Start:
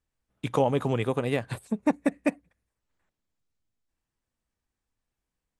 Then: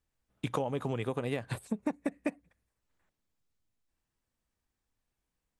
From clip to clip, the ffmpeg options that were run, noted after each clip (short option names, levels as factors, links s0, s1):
-af "acompressor=threshold=0.0355:ratio=6"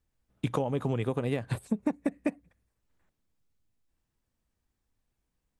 -af "lowshelf=f=430:g=6"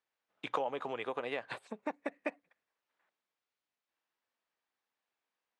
-af "highpass=680,lowpass=3800,volume=1.19"